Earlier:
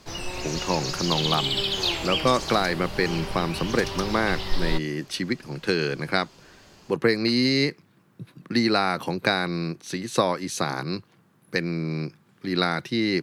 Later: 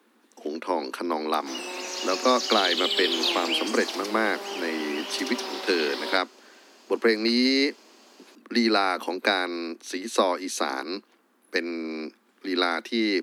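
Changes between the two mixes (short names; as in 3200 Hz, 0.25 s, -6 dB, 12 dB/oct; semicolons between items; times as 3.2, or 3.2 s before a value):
background: entry +1.40 s; master: add steep high-pass 220 Hz 96 dB/oct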